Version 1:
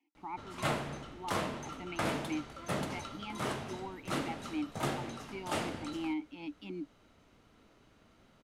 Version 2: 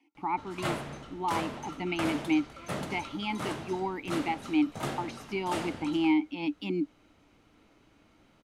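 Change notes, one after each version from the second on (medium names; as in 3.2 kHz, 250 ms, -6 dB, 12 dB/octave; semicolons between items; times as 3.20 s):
speech +11.0 dB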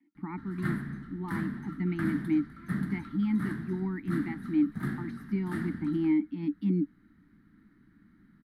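master: add FFT filter 110 Hz 0 dB, 200 Hz +11 dB, 370 Hz -5 dB, 550 Hz -25 dB, 910 Hz -15 dB, 1.8 kHz +5 dB, 2.6 kHz -22 dB, 4.1 kHz -12 dB, 6.6 kHz -24 dB, 11 kHz -6 dB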